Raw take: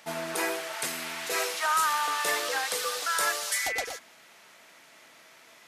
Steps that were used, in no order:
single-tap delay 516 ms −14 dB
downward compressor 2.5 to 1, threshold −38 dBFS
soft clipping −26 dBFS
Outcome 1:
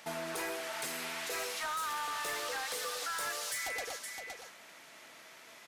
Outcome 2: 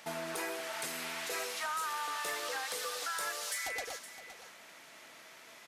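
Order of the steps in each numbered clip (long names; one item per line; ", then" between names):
single-tap delay, then soft clipping, then downward compressor
downward compressor, then single-tap delay, then soft clipping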